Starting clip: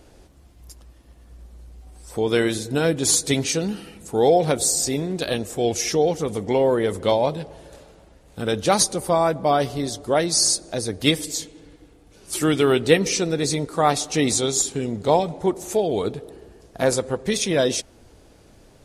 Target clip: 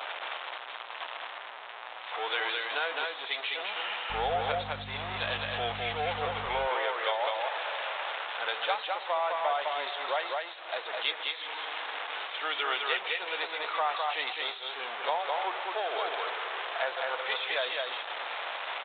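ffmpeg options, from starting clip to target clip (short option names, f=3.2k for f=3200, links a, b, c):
-filter_complex "[0:a]aeval=exprs='val(0)+0.5*0.075*sgn(val(0))':c=same,highpass=f=750:w=0.5412,highpass=f=750:w=1.3066,acompressor=threshold=-26dB:ratio=5,asettb=1/sr,asplit=3[a][b][c];[a]atrim=end=4.104[d];[b]atrim=start=4.1:end=6.46,asetpts=PTS-STARTPTS,afade=t=in:d=0.004:c=qsin,afade=t=out:st=2.356:d=0.004:c=qsin,aeval=exprs='val(0)+0.01*(sin(2*PI*50*n/s)+sin(2*PI*2*50*n/s)/2+sin(2*PI*3*50*n/s)/3+sin(2*PI*4*50*n/s)/4+sin(2*PI*5*50*n/s)/5)':c=same[e];[c]atrim=start=6.456[f];[d][e]acrossfade=d=0.004:c1=hsin:c2=qsin[g];[g][f]acrossfade=d=0.004:c1=qsin:c2=hsin,aecho=1:1:209:0.708,aresample=8000,aresample=44100,volume=-1dB"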